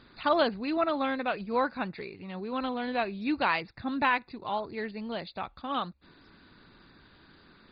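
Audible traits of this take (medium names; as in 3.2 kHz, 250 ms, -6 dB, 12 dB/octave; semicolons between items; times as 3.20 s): MP2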